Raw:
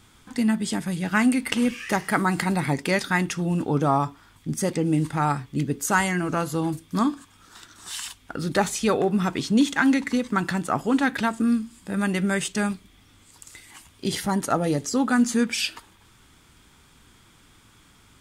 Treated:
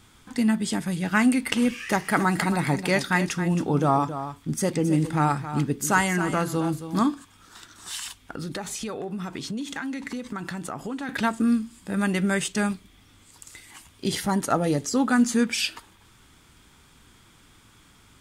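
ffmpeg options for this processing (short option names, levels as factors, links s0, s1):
-filter_complex "[0:a]asettb=1/sr,asplit=3[s0][s1][s2];[s0]atrim=end=1.784[s3];[s1]atrim=start=1.78:end=7.12,asetpts=PTS-STARTPTS,afade=t=in:d=0.004:c=qsin,afade=t=out:st=5.336:d=0.004:c=qsin,aecho=1:1:270:0.282,atrim=end_sample=235494[s4];[s2]atrim=start=7.116[s5];[s3][s4]acrossfade=d=0.004:c1=hsin:c2=qsin[s6];[s6][s5]acrossfade=d=0.004:c1=qsin:c2=hsin,asettb=1/sr,asplit=3[s7][s8][s9];[s7]atrim=end=7.964[s10];[s8]atrim=start=7.96:end=11.09,asetpts=PTS-STARTPTS,afade=t=in:d=0.004:c=qsin,afade=t=out:st=3.126:d=0.004:c=qsin,acompressor=threshold=0.0355:ratio=6:attack=3.2:release=140:knee=1:detection=peak[s11];[s9]atrim=start=11.086[s12];[s10][s11]acrossfade=d=0.004:c1=hsin:c2=qsin[s13];[s13][s12]acrossfade=d=0.004:c1=qsin:c2=hsin"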